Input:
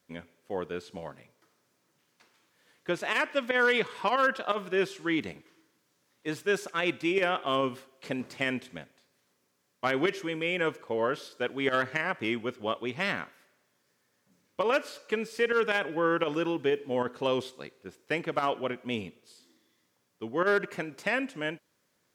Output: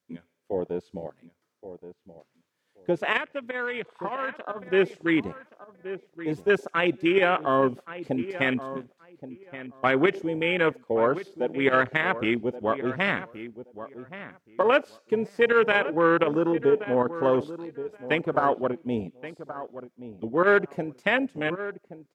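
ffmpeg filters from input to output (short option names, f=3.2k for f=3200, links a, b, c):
-filter_complex "[0:a]afwtdn=0.0251,asettb=1/sr,asplit=3[a][b][c];[a]atrim=end=3.174[d];[b]atrim=start=3.17:end=4.7,asetpts=PTS-STARTPTS,afade=t=in:d=0.004:c=qsin,afade=t=out:st=1.526:d=0.004:c=qsin,acompressor=threshold=-44dB:ratio=2[e];[c]atrim=start=4.696[f];[d][e]acrossfade=d=0.004:c1=hsin:c2=qsin[g];[g][f]acrossfade=d=0.004:c1=qsin:c2=hsin,asplit=2[h][i];[i]adelay=1125,lowpass=f=1.9k:p=1,volume=-13dB,asplit=2[j][k];[k]adelay=1125,lowpass=f=1.9k:p=1,volume=0.18[l];[h][j][l]amix=inputs=3:normalize=0,volume=6dB"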